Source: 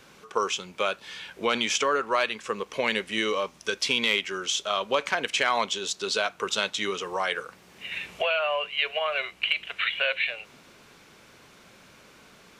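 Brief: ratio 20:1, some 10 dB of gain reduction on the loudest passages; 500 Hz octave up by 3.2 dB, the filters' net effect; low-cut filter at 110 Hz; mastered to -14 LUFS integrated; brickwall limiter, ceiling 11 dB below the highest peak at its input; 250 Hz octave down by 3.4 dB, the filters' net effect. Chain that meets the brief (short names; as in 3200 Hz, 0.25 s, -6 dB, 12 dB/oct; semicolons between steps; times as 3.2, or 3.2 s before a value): HPF 110 Hz; bell 250 Hz -7 dB; bell 500 Hz +5.5 dB; compressor 20:1, threshold -28 dBFS; gain +23 dB; limiter -4 dBFS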